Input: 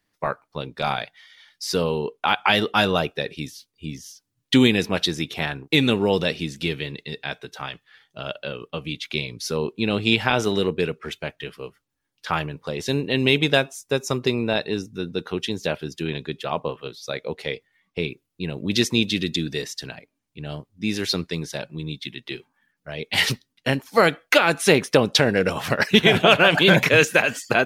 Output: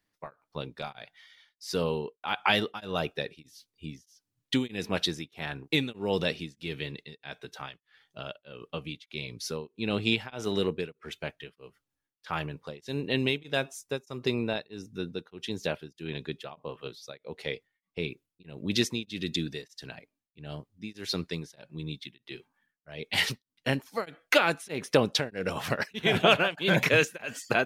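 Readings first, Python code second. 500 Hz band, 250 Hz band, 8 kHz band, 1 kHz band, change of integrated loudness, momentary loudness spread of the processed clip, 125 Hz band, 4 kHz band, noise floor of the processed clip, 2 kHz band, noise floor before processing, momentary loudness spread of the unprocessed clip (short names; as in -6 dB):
-8.5 dB, -9.5 dB, -9.0 dB, -9.0 dB, -8.5 dB, 19 LU, -8.5 dB, -8.5 dB, under -85 dBFS, -8.5 dB, -78 dBFS, 18 LU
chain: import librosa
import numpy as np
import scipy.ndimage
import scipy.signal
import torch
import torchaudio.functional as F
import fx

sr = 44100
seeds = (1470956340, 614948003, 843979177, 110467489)

y = x * np.abs(np.cos(np.pi * 1.6 * np.arange(len(x)) / sr))
y = y * librosa.db_to_amplitude(-5.5)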